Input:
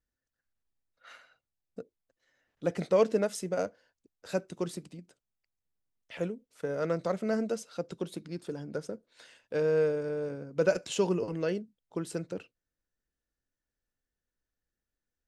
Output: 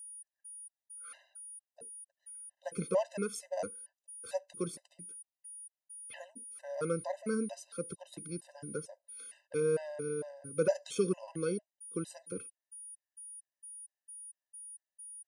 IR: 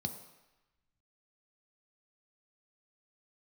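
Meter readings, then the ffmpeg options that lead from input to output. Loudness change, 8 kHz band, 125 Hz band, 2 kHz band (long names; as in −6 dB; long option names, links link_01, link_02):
−7.5 dB, +5.5 dB, −5.0 dB, −7.0 dB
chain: -af "aeval=exprs='val(0)+0.00708*sin(2*PI*9600*n/s)':channel_layout=same,afftfilt=real='re*gt(sin(2*PI*2.2*pts/sr)*(1-2*mod(floor(b*sr/1024/520),2)),0)':imag='im*gt(sin(2*PI*2.2*pts/sr)*(1-2*mod(floor(b*sr/1024/520),2)),0)':win_size=1024:overlap=0.75,volume=-2.5dB"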